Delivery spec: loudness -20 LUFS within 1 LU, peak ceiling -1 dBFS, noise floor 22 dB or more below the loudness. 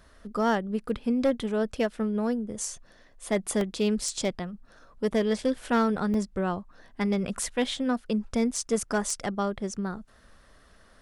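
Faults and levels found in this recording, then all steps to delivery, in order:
clipped 0.4%; flat tops at -17.5 dBFS; dropouts 4; longest dropout 2.1 ms; loudness -28.5 LUFS; peak -17.5 dBFS; loudness target -20.0 LUFS
-> clip repair -17.5 dBFS; interpolate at 0.89/3.61/6.14/8.56, 2.1 ms; gain +8.5 dB

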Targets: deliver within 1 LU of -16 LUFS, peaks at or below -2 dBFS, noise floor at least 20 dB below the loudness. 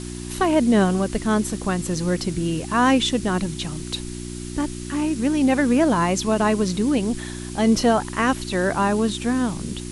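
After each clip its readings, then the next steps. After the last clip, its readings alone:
hum 60 Hz; harmonics up to 360 Hz; hum level -30 dBFS; noise floor -33 dBFS; noise floor target -42 dBFS; loudness -21.5 LUFS; peak -6.0 dBFS; loudness target -16.0 LUFS
-> de-hum 60 Hz, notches 6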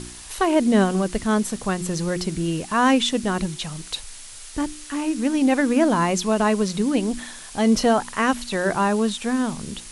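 hum none; noise floor -40 dBFS; noise floor target -42 dBFS
-> noise print and reduce 6 dB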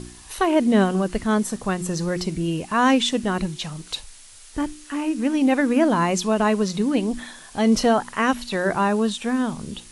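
noise floor -45 dBFS; loudness -22.0 LUFS; peak -6.0 dBFS; loudness target -16.0 LUFS
-> gain +6 dB; limiter -2 dBFS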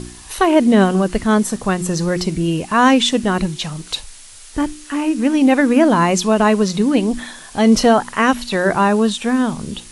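loudness -16.0 LUFS; peak -2.0 dBFS; noise floor -39 dBFS

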